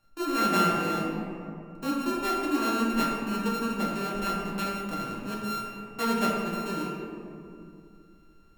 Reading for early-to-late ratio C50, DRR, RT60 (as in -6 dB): 0.0 dB, -4.0 dB, 2.4 s